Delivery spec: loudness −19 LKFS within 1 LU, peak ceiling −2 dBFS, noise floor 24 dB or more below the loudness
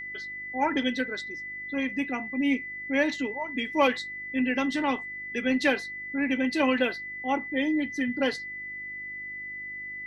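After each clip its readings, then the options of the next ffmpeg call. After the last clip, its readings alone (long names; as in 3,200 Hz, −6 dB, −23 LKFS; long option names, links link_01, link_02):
mains hum 50 Hz; hum harmonics up to 350 Hz; level of the hum −57 dBFS; interfering tone 2,000 Hz; level of the tone −35 dBFS; integrated loudness −28.5 LKFS; sample peak −9.5 dBFS; target loudness −19.0 LKFS
→ -af "bandreject=frequency=50:width_type=h:width=4,bandreject=frequency=100:width_type=h:width=4,bandreject=frequency=150:width_type=h:width=4,bandreject=frequency=200:width_type=h:width=4,bandreject=frequency=250:width_type=h:width=4,bandreject=frequency=300:width_type=h:width=4,bandreject=frequency=350:width_type=h:width=4"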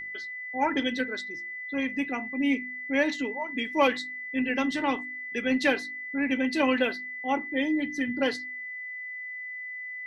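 mains hum none found; interfering tone 2,000 Hz; level of the tone −35 dBFS
→ -af "bandreject=frequency=2000:width=30"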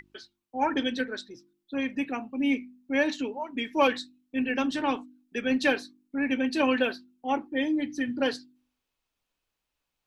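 interfering tone none found; integrated loudness −29.0 LKFS; sample peak −9.0 dBFS; target loudness −19.0 LKFS
→ -af "volume=10dB,alimiter=limit=-2dB:level=0:latency=1"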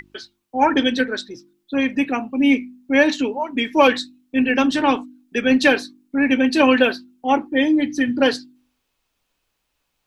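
integrated loudness −19.0 LKFS; sample peak −2.0 dBFS; background noise floor −74 dBFS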